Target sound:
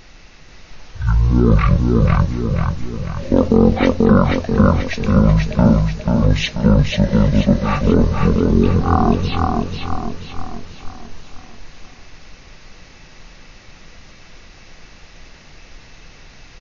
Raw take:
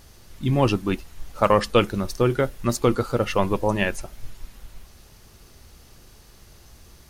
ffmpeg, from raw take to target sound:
-filter_complex "[0:a]asplit=2[s0][s1];[s1]aecho=0:1:208|416|624|832|1040|1248:0.668|0.314|0.148|0.0694|0.0326|0.0153[s2];[s0][s2]amix=inputs=2:normalize=0,asetrate=18846,aresample=44100,alimiter=level_in=2.51:limit=0.891:release=50:level=0:latency=1,volume=0.891"

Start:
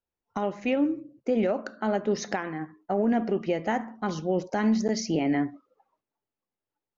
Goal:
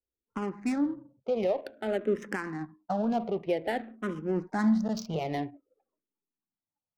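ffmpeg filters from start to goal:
-filter_complex "[0:a]adynamicsmooth=sensitivity=6.5:basefreq=800,asplit=2[s0][s1];[s1]afreqshift=-0.52[s2];[s0][s2]amix=inputs=2:normalize=1"

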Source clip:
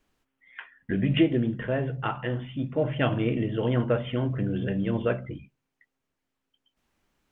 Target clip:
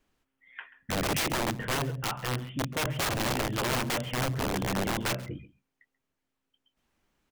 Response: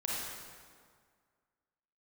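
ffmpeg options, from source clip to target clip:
-af "aeval=exprs='(mod(12.6*val(0)+1,2)-1)/12.6':c=same,aecho=1:1:135:0.106,volume=0.841"

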